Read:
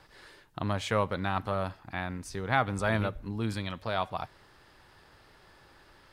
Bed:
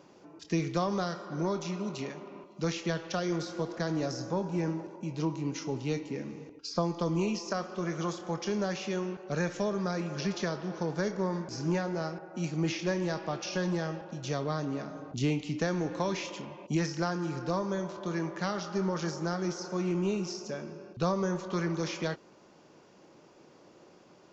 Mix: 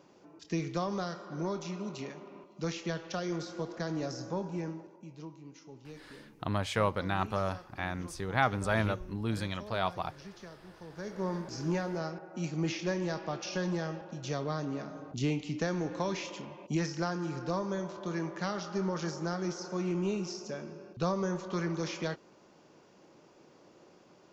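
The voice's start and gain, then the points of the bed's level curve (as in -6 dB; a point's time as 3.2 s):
5.85 s, -1.0 dB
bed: 4.45 s -3.5 dB
5.42 s -16.5 dB
10.84 s -16.5 dB
11.27 s -2 dB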